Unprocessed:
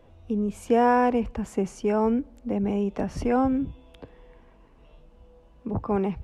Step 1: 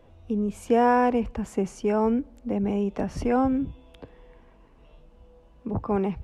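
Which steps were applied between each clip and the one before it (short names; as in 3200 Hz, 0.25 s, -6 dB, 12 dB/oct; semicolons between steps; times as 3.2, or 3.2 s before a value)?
nothing audible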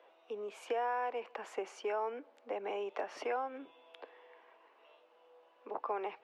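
Chebyshev high-pass 330 Hz, order 3; three-band isolator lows -22 dB, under 510 Hz, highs -17 dB, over 4200 Hz; compressor 6:1, threshold -34 dBFS, peak gain reduction 13 dB; gain +1 dB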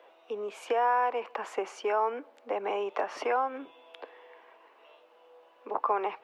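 dynamic EQ 1100 Hz, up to +6 dB, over -53 dBFS, Q 1.8; gain +6 dB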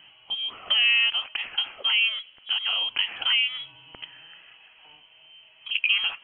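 inverted band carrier 3600 Hz; gain +5 dB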